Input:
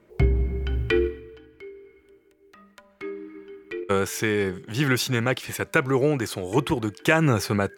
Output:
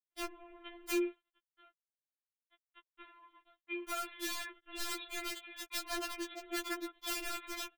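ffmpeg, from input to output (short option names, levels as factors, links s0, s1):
-af "highpass=f=46:p=1,equalizer=f=130:w=0.59:g=-12,bandreject=f=450:w=14,aecho=1:1:6.7:0.38,bandreject=f=162.4:t=h:w=4,bandreject=f=324.8:t=h:w=4,bandreject=f=487.2:t=h:w=4,bandreject=f=649.6:t=h:w=4,bandreject=f=812:t=h:w=4,bandreject=f=974.4:t=h:w=4,bandreject=f=1136.8:t=h:w=4,bandreject=f=1299.2:t=h:w=4,bandreject=f=1461.6:t=h:w=4,bandreject=f=1624:t=h:w=4,acompressor=threshold=0.00398:ratio=1.5,aresample=11025,aeval=exprs='sgn(val(0))*max(abs(val(0))-0.00562,0)':c=same,aresample=44100,aresample=8000,aresample=44100,aeval=exprs='(mod(29.9*val(0)+1,2)-1)/29.9':c=same,afftfilt=real='re*4*eq(mod(b,16),0)':imag='im*4*eq(mod(b,16),0)':win_size=2048:overlap=0.75,volume=1.33"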